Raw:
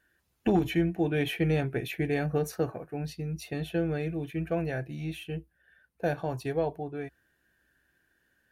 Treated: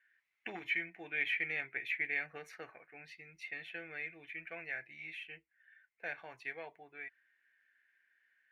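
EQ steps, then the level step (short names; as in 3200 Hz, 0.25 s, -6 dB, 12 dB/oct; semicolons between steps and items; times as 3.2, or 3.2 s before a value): band-pass 2100 Hz, Q 7.6; +9.5 dB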